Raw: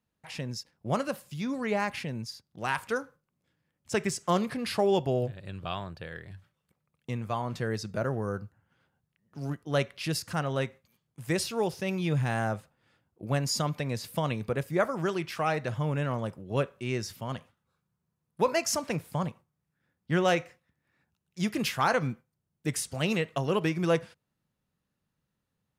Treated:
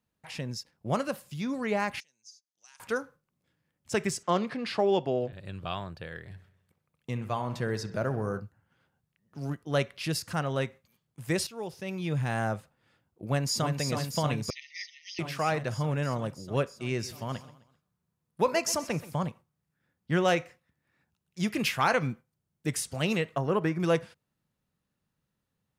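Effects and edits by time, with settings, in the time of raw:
2.00–2.80 s: band-pass filter 6.2 kHz, Q 7.8
4.23–5.33 s: band-pass 180–5000 Hz
6.19–8.40 s: feedback echo behind a low-pass 65 ms, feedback 59%, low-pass 3.6 kHz, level -13.5 dB
11.47–12.45 s: fade in, from -12 dB
13.25–13.76 s: echo throw 320 ms, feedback 80%, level -5.5 dB
14.50–15.19 s: brick-wall FIR band-pass 1.8–6.5 kHz
16.76–19.16 s: feedback delay 129 ms, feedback 40%, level -17.5 dB
21.50–22.06 s: peaking EQ 2.4 kHz +5 dB 0.6 oct
23.36–23.80 s: resonant high shelf 2.2 kHz -7.5 dB, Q 1.5

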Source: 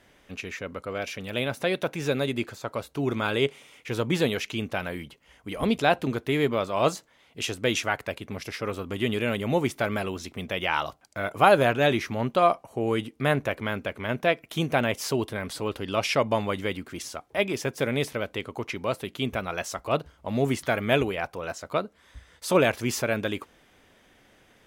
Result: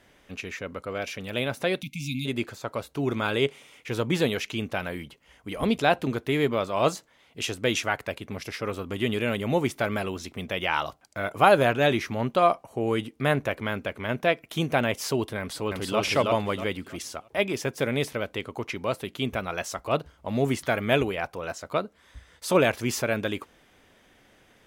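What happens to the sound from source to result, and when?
1.82–2.26 s: spectral selection erased 290–2100 Hz
15.39–16.00 s: echo throw 320 ms, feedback 30%, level -1 dB

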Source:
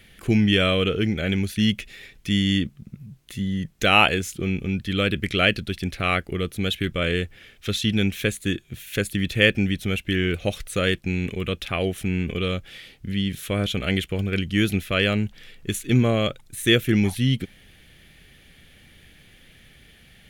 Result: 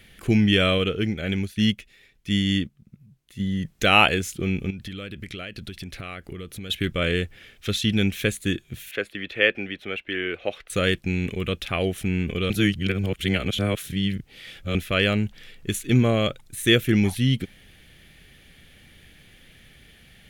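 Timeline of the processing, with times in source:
0.78–3.40 s: upward expansion, over -41 dBFS
4.70–6.70 s: compression 10:1, threshold -31 dBFS
8.91–10.70 s: three-band isolator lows -20 dB, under 330 Hz, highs -22 dB, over 3.4 kHz
12.50–14.75 s: reverse

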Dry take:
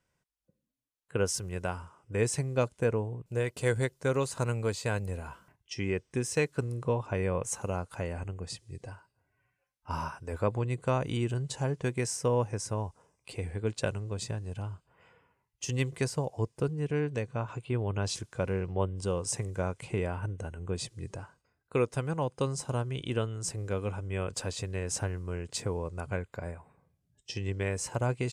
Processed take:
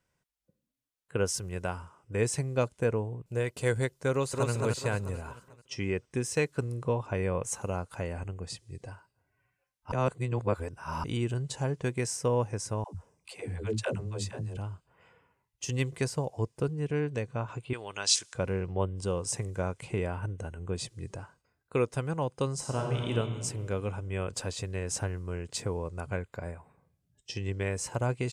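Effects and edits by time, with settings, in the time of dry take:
4.11–4.51 s: echo throw 220 ms, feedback 50%, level -2.5 dB
9.92–11.04 s: reverse
12.84–14.57 s: phase dispersion lows, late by 109 ms, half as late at 340 Hz
17.73–18.34 s: frequency weighting ITU-R 468
22.57–23.10 s: reverb throw, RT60 2.1 s, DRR -0.5 dB

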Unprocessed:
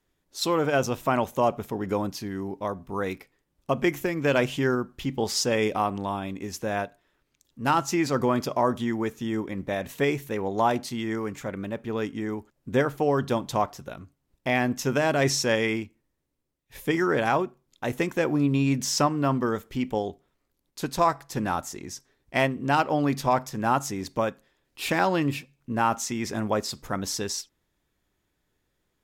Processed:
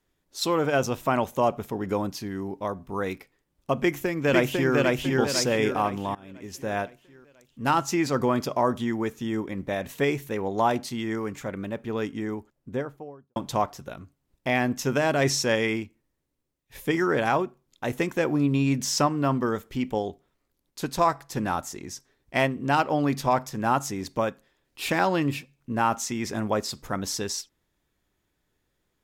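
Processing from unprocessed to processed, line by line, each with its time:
3.78–4.74 s: echo throw 500 ms, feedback 45%, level -1 dB
6.15–6.77 s: fade in, from -23.5 dB
12.17–13.36 s: studio fade out

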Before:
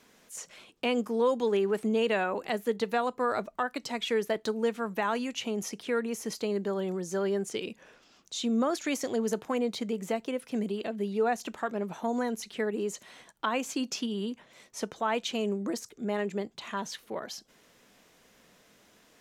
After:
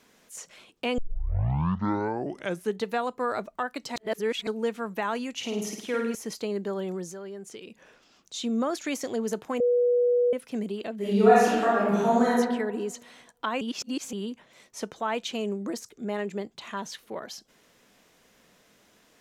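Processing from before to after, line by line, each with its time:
0.98 s: tape start 1.86 s
3.96–4.47 s: reverse
5.35–6.15 s: flutter echo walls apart 9 m, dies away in 0.67 s
7.11–8.34 s: compression 2:1, threshold -45 dBFS
9.60–10.33 s: bleep 487 Hz -19 dBFS
10.96–12.30 s: reverb throw, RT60 1.2 s, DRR -9.5 dB
13.61–14.13 s: reverse

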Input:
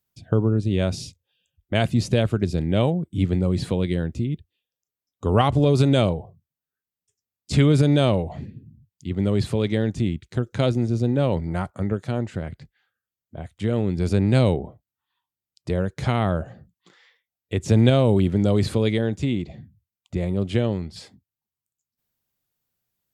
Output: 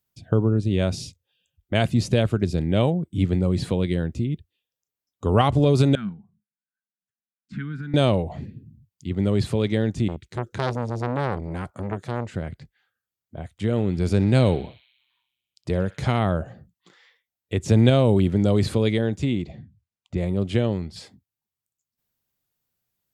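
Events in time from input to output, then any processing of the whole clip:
5.95–7.94 s: two resonant band-passes 560 Hz, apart 2.9 oct
10.08–12.28 s: transformer saturation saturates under 1.2 kHz
13.71–16.19 s: band-passed feedback delay 62 ms, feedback 76%, band-pass 2.9 kHz, level -13 dB
19.51–20.18 s: distance through air 57 m

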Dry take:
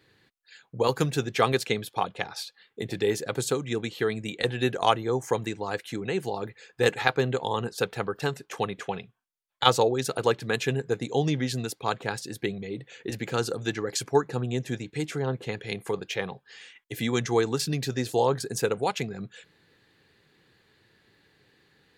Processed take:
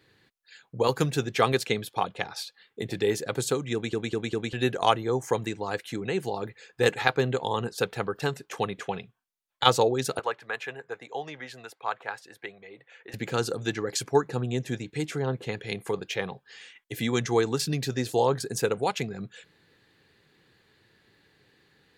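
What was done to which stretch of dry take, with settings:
3.73 s: stutter in place 0.20 s, 4 plays
10.19–13.14 s: three-band isolator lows -22 dB, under 590 Hz, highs -15 dB, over 2.4 kHz

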